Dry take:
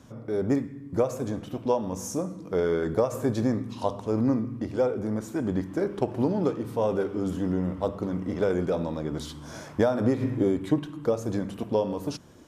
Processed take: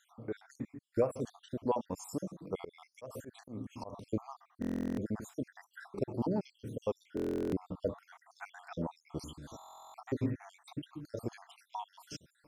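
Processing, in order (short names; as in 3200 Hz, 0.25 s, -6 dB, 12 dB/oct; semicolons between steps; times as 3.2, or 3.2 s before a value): random spectral dropouts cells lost 65%; 2.59–3.93 auto swell 0.204 s; stuck buffer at 4.6/7.15/9.57, samples 1024, times 15; gain -5 dB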